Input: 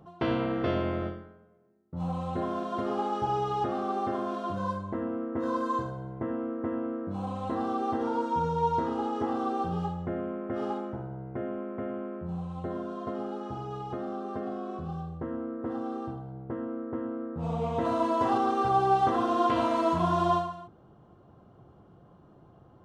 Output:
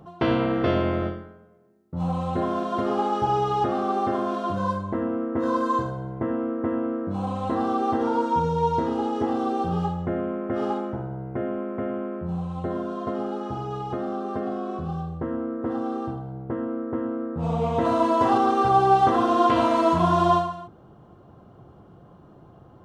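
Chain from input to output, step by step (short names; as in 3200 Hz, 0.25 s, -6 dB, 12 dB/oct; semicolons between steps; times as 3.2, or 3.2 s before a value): 8.4–9.68 bell 1200 Hz -5 dB 0.96 oct; gain +6 dB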